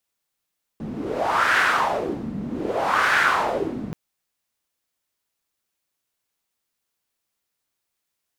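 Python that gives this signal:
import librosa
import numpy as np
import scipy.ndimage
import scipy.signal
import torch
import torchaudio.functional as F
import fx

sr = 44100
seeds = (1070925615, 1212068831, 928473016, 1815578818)

y = fx.wind(sr, seeds[0], length_s=3.13, low_hz=200.0, high_hz=1600.0, q=3.5, gusts=2, swing_db=12)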